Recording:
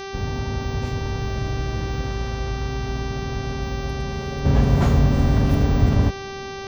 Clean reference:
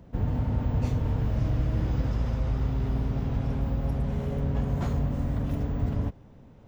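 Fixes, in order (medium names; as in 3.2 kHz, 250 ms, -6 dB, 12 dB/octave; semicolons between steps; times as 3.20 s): de-hum 390.8 Hz, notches 16; trim 0 dB, from 4.45 s -10.5 dB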